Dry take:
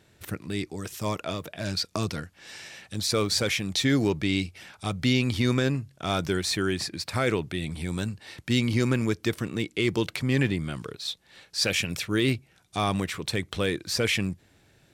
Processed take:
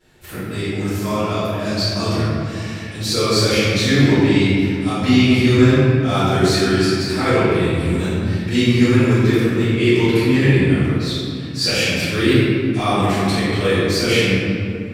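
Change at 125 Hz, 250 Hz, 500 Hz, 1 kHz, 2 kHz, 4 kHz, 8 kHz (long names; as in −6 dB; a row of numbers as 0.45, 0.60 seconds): +12.0, +12.0, +12.0, +11.0, +9.5, +8.0, +5.5 decibels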